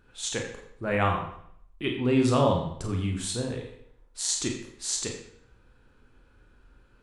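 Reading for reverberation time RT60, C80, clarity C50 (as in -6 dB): 0.65 s, 8.0 dB, 5.5 dB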